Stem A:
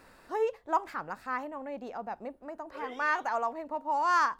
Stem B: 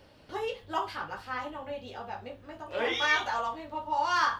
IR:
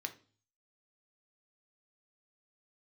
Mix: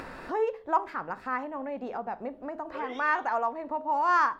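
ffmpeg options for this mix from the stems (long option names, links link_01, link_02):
-filter_complex "[0:a]lowpass=frequency=1700:poles=1,volume=0.5dB,asplit=3[link_01][link_02][link_03];[link_02]volume=-3dB[link_04];[1:a]volume=-19dB[link_05];[link_03]apad=whole_len=193609[link_06];[link_05][link_06]sidechaincompress=threshold=-40dB:ratio=8:attack=16:release=106[link_07];[2:a]atrim=start_sample=2205[link_08];[link_04][link_08]afir=irnorm=-1:irlink=0[link_09];[link_01][link_07][link_09]amix=inputs=3:normalize=0,bandreject=frequency=207.4:width_type=h:width=4,bandreject=frequency=414.8:width_type=h:width=4,bandreject=frequency=622.2:width_type=h:width=4,acompressor=mode=upward:threshold=-30dB:ratio=2.5"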